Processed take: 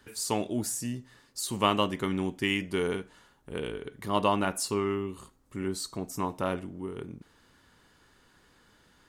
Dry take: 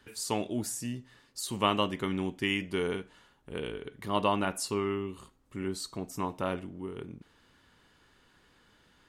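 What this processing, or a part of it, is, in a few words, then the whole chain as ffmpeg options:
exciter from parts: -filter_complex "[0:a]asplit=2[a][b];[b]highpass=2.3k,asoftclip=type=tanh:threshold=-39.5dB,highpass=2.7k,volume=-6dB[c];[a][c]amix=inputs=2:normalize=0,volume=2dB"

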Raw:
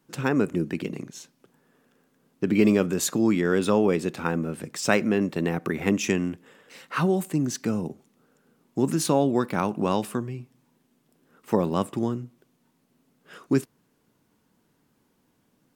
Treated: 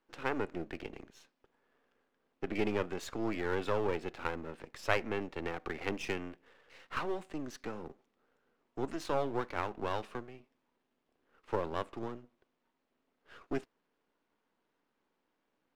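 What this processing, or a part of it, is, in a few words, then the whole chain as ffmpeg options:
crystal radio: -af "highpass=390,lowpass=3.3k,aeval=exprs='if(lt(val(0),0),0.251*val(0),val(0))':c=same,volume=-4.5dB"

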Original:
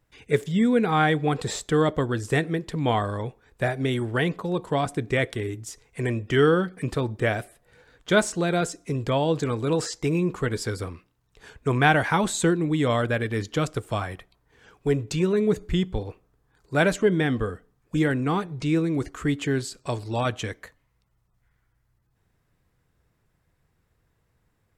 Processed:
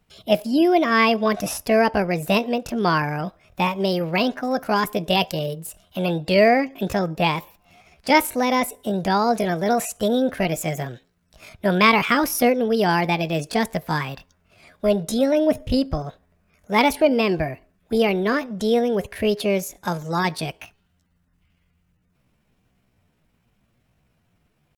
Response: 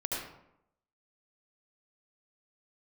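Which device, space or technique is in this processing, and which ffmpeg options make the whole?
chipmunk voice: -filter_complex "[0:a]asetrate=64194,aresample=44100,atempo=0.686977,asettb=1/sr,asplit=3[a][b][c];[a]atrim=end=4.444[d];[b]atrim=start=4.44:end=5.54,asetpts=PTS-STARTPTS,afade=t=in:d=0.004:c=qsin,afade=t=out:st=1.096:d=0.004:c=qsin,highshelf=f=5.5k:g=5[e];[c]atrim=start=5.536[f];[d][e]acrossfade=d=0.004:c1=hsin:c2=qsin[g];[g][f]acrossfade=d=0.004:c1=qsin:c2=hsin,volume=3.5dB"

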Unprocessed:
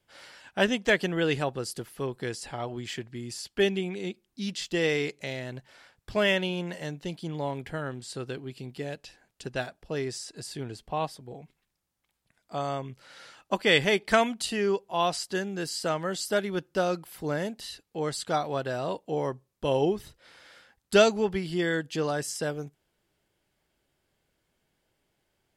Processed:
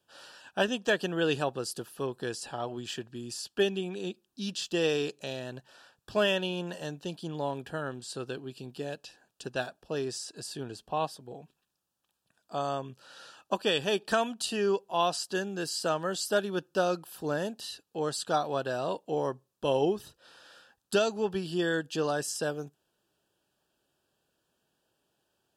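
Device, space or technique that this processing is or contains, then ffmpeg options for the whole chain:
PA system with an anti-feedback notch: -af "highpass=f=190:p=1,asuperstop=centerf=2100:order=4:qfactor=3.1,alimiter=limit=-14.5dB:level=0:latency=1:release=379"

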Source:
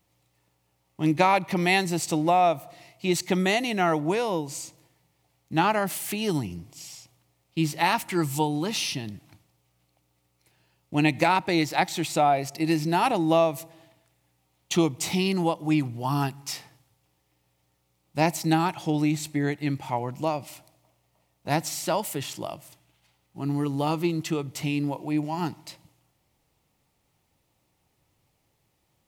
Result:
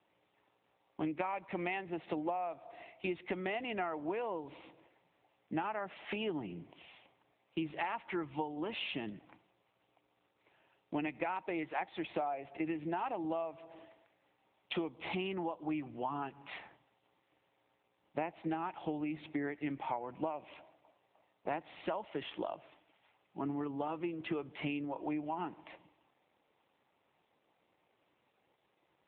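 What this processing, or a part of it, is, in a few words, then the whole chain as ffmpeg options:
voicemail: -af "highpass=320,lowpass=2.7k,acompressor=threshold=-35dB:ratio=10,volume=2dB" -ar 8000 -c:a libopencore_amrnb -b:a 7950

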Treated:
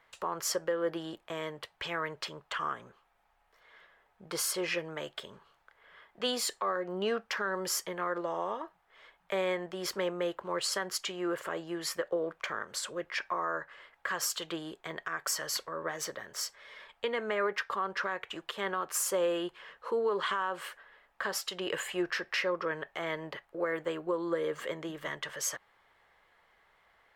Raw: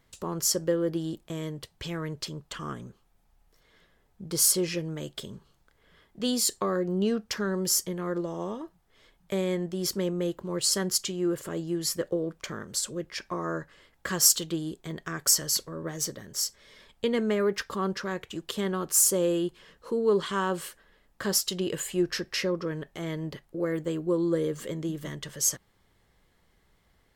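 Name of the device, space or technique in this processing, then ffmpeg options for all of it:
DJ mixer with the lows and highs turned down: -filter_complex "[0:a]acrossover=split=580 2800:gain=0.0794 1 0.141[a][b][c];[a][b][c]amix=inputs=3:normalize=0,alimiter=level_in=5.5dB:limit=-24dB:level=0:latency=1:release=203,volume=-5.5dB,volume=8dB"

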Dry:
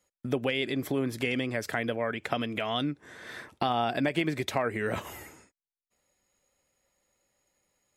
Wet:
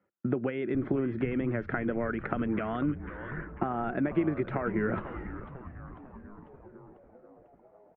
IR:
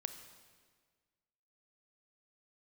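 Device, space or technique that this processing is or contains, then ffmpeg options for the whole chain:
bass amplifier: -filter_complex "[0:a]acompressor=threshold=-29dB:ratio=6,highpass=f=89:w=0.5412,highpass=f=89:w=1.3066,equalizer=f=200:t=q:w=4:g=7,equalizer=f=350:t=q:w=4:g=8,equalizer=f=1.4k:t=q:w=4:g=9,lowpass=f=2.1k:w=0.5412,lowpass=f=2.1k:w=1.3066,asettb=1/sr,asplit=3[a][b][c];[a]atrim=end=3.174[d];[b]atrim=start=3.17:end=3.84,asetpts=PTS-STARTPTS,afade=t=in:d=0.004:c=qsin,afade=t=out:st=0.666:d=0.004:c=qsin,lowpass=f=2.6k:w=0.5412,lowpass=f=2.6k:w=1.3066[e];[c]atrim=start=3.836[f];[d][e]acrossfade=d=0.004:c1=hsin:c2=qsin[g];[g][f]acrossfade=d=0.004:c1=qsin:c2=hsin,lowshelf=f=480:g=6.5,asplit=9[h][i][j][k][l][m][n][o][p];[i]adelay=496,afreqshift=-140,volume=-12dB[q];[j]adelay=992,afreqshift=-280,volume=-15.9dB[r];[k]adelay=1488,afreqshift=-420,volume=-19.8dB[s];[l]adelay=1984,afreqshift=-560,volume=-23.6dB[t];[m]adelay=2480,afreqshift=-700,volume=-27.5dB[u];[n]adelay=2976,afreqshift=-840,volume=-31.4dB[v];[o]adelay=3472,afreqshift=-980,volume=-35.3dB[w];[p]adelay=3968,afreqshift=-1120,volume=-39.1dB[x];[h][q][r][s][t][u][v][w][x]amix=inputs=9:normalize=0,volume=-3dB"

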